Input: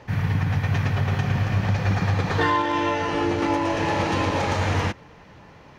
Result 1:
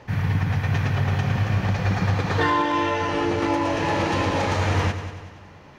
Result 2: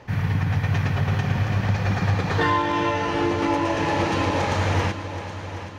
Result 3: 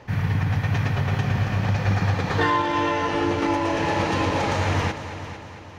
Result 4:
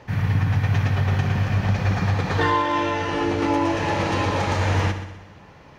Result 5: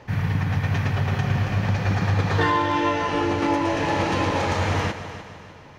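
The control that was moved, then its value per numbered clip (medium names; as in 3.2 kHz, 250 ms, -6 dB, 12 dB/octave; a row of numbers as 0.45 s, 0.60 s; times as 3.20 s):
multi-head delay, time: 95 ms, 387 ms, 226 ms, 63 ms, 150 ms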